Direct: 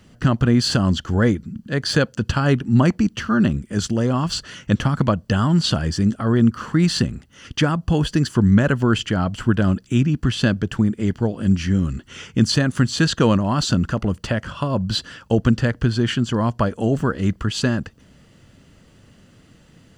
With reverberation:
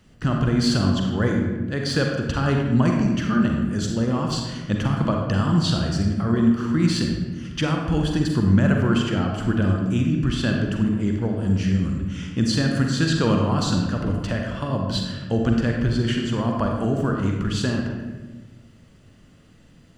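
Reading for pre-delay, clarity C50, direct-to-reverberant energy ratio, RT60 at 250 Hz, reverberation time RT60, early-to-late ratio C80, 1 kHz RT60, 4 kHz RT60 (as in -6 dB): 39 ms, 2.0 dB, 1.0 dB, 1.8 s, 1.2 s, 4.5 dB, 1.1 s, 0.80 s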